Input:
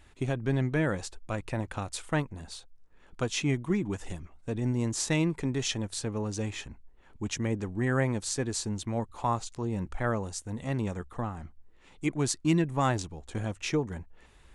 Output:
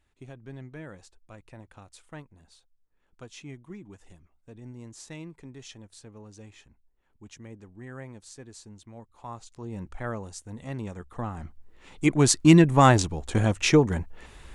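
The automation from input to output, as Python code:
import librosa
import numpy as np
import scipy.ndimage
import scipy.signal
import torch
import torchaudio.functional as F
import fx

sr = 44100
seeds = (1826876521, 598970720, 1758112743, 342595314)

y = fx.gain(x, sr, db=fx.line((9.1, -14.5), (9.78, -4.0), (10.95, -4.0), (11.42, 3.5), (12.44, 10.0)))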